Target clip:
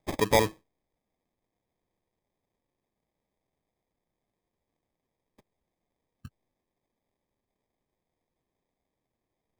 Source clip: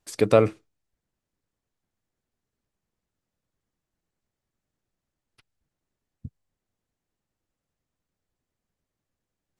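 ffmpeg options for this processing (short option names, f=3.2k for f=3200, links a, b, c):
-af "bass=f=250:g=-2,treble=f=4k:g=14,acrusher=samples=31:mix=1:aa=0.000001,volume=-5dB"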